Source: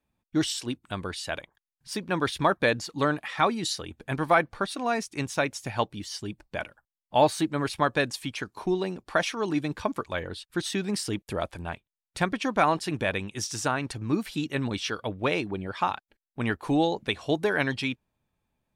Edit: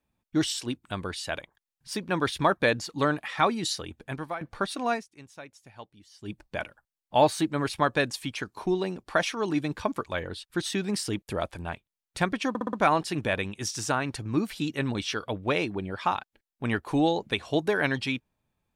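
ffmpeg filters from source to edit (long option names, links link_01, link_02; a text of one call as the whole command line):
ffmpeg -i in.wav -filter_complex "[0:a]asplit=8[link_01][link_02][link_03][link_04][link_05][link_06][link_07][link_08];[link_01]atrim=end=4.41,asetpts=PTS-STARTPTS,afade=type=out:start_time=3.89:duration=0.52:silence=0.0944061[link_09];[link_02]atrim=start=4.41:end=5.08,asetpts=PTS-STARTPTS,afade=type=in:duration=0.004:curve=hsin:silence=0.0944061,afade=type=out:start_time=0.52:duration=0.15:curve=qua:silence=0.125893[link_10];[link_03]atrim=start=5.08:end=6.15,asetpts=PTS-STARTPTS,volume=-18dB[link_11];[link_04]atrim=start=6.15:end=12.552,asetpts=PTS-STARTPTS,afade=type=in:duration=0.15:curve=qua:silence=0.125893[link_12];[link_05]atrim=start=12.488:end=12.552[link_13];[link_06]atrim=start=12.488:end=12.552[link_14];[link_07]atrim=start=12.488:end=12.552[link_15];[link_08]atrim=start=12.488[link_16];[link_09][link_10][link_11][link_12]concat=n=4:v=0:a=1[link_17];[link_17][link_13]acrossfade=duration=0.004:curve1=hsin:curve2=hsin[link_18];[link_18][link_14]acrossfade=duration=0.004:curve1=hsin:curve2=hsin[link_19];[link_19][link_15]acrossfade=duration=0.004:curve1=hsin:curve2=hsin[link_20];[link_20][link_16]acrossfade=duration=0.004:curve1=hsin:curve2=hsin" out.wav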